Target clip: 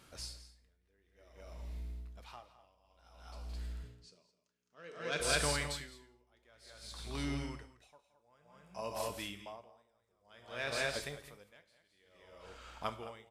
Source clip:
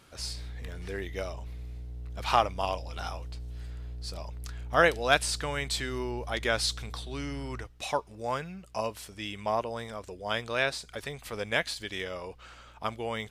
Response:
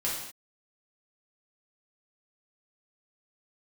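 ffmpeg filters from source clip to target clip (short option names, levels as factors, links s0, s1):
-filter_complex "[0:a]asoftclip=type=tanh:threshold=0.251,asettb=1/sr,asplit=3[s0][s1][s2];[s0]atrim=end=3.834[s3];[s1]atrim=start=3.83:end=5.2,asetpts=PTS-STARTPTS,afade=t=in:d=0.004:c=qsin,afade=t=out:st=1.366:d=0.004:c=qsin,highpass=f=130:w=0.5412,highpass=f=130:w=1.3066,equalizer=f=190:t=q:w=4:g=5,equalizer=f=420:t=q:w=4:g=10,equalizer=f=770:t=q:w=4:g=-10,equalizer=f=2700:t=q:w=4:g=5,equalizer=f=6300:t=q:w=4:g=4,lowpass=f=8600:w=0.5412,lowpass=f=8600:w=1.3066[s4];[s2]atrim=start=5.196[s5];[s3][s4]acrossfade=d=0.004:c1=hsin:c2=qsin[s6];[s6][s5]acrossfade=d=0.004:c1=qsin:c2=hsin,aecho=1:1:170|212:0.316|0.562,asplit=2[s7][s8];[1:a]atrim=start_sample=2205,highshelf=f=5700:g=8[s9];[s8][s9]afir=irnorm=-1:irlink=0,volume=0.237[s10];[s7][s10]amix=inputs=2:normalize=0,aeval=exprs='val(0)*pow(10,-37*(0.5-0.5*cos(2*PI*0.55*n/s))/20)':c=same,volume=0.562"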